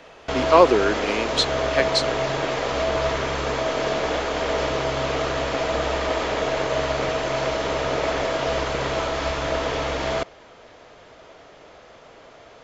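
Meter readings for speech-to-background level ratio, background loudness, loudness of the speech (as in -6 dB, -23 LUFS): 3.0 dB, -24.5 LUFS, -21.5 LUFS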